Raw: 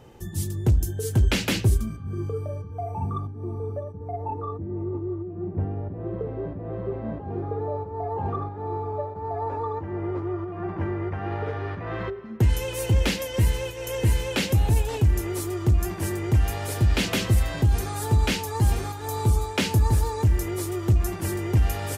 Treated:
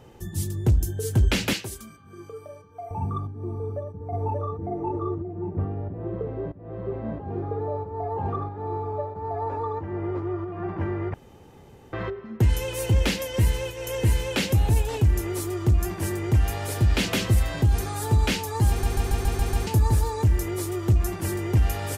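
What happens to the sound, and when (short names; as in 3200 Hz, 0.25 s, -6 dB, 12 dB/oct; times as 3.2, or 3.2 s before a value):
1.53–2.91 HPF 960 Hz 6 dB/oct
3.54–4.63 echo throw 0.58 s, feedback 20%, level -1 dB
6.52–7.04 fade in equal-power, from -18 dB
11.14–11.93 room tone
18.69 stutter in place 0.14 s, 7 plays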